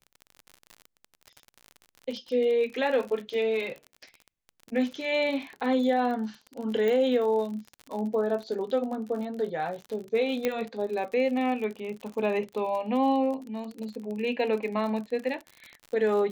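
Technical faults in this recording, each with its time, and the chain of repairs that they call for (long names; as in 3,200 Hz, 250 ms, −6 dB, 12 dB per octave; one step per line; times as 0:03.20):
surface crackle 47 per second −34 dBFS
0:06.88: click
0:10.45: click −13 dBFS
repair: click removal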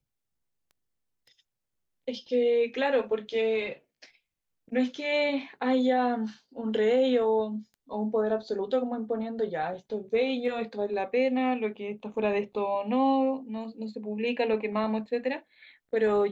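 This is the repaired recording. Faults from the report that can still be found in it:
0:10.45: click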